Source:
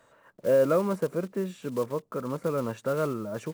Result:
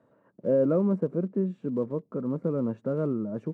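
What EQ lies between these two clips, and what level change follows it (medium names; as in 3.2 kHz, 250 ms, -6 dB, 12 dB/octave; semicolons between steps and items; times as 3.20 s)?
band-pass filter 220 Hz, Q 1.2; +6.0 dB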